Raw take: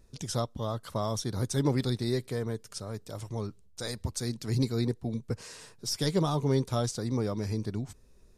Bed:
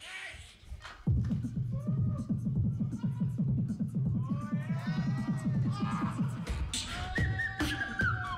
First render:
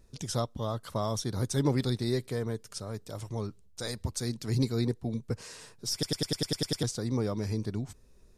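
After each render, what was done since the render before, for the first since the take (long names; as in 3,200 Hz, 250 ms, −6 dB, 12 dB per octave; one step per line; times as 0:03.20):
0:05.93: stutter in place 0.10 s, 9 plays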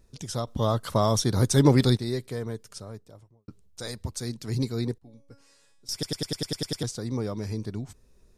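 0:00.47–0:01.97: clip gain +8.5 dB
0:02.63–0:03.48: fade out and dull
0:04.98–0:05.89: tuned comb filter 280 Hz, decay 0.57 s, mix 90%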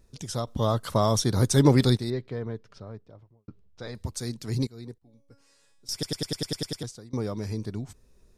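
0:02.10–0:03.95: high-frequency loss of the air 250 metres
0:04.67–0:05.90: fade in, from −18 dB
0:06.58–0:07.13: fade out, to −22.5 dB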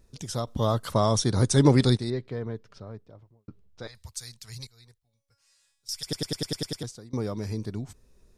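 0:00.93–0:02.27: linear-phase brick-wall low-pass 11,000 Hz
0:03.87–0:06.07: guitar amp tone stack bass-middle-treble 10-0-10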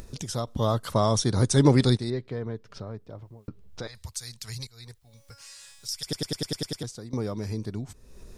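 upward compression, threshold −30 dBFS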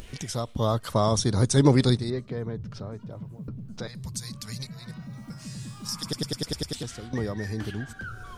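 mix in bed −8 dB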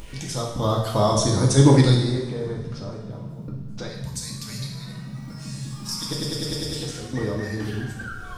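coupled-rooms reverb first 0.9 s, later 2.8 s, from −18 dB, DRR −2 dB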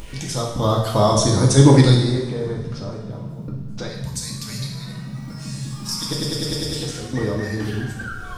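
level +3.5 dB
brickwall limiter −1 dBFS, peak gain reduction 1 dB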